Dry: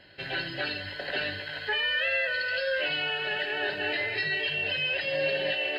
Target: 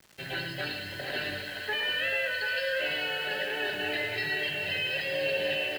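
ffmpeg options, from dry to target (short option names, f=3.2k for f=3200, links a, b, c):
-filter_complex "[0:a]acrusher=bits=7:mix=0:aa=0.000001,lowshelf=f=76:g=-5.5,acrossover=split=260|1900[a][b][c];[a]acontrast=35[d];[d][b][c]amix=inputs=3:normalize=0,bandreject=f=50:t=h:w=6,bandreject=f=100:t=h:w=6,bandreject=f=150:t=h:w=6,aecho=1:1:107|434|730:0.376|0.251|0.398,volume=-3dB"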